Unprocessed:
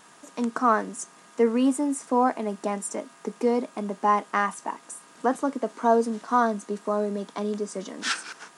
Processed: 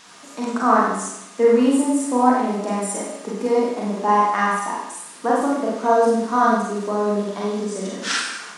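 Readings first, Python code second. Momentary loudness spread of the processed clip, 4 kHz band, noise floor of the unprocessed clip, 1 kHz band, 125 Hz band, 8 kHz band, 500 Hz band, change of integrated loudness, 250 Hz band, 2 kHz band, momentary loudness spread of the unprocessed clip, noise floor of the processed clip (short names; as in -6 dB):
10 LU, +6.5 dB, -53 dBFS, +6.0 dB, n/a, +6.5 dB, +6.5 dB, +6.0 dB, +6.0 dB, +6.0 dB, 13 LU, -42 dBFS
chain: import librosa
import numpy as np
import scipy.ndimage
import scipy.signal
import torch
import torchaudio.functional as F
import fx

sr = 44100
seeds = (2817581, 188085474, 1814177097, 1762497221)

y = fx.rev_schroeder(x, sr, rt60_s=0.8, comb_ms=32, drr_db=-5.0)
y = fx.dmg_noise_band(y, sr, seeds[0], low_hz=860.0, high_hz=6900.0, level_db=-50.0)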